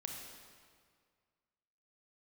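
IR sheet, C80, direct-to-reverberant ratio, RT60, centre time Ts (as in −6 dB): 3.5 dB, 1.0 dB, 2.0 s, 72 ms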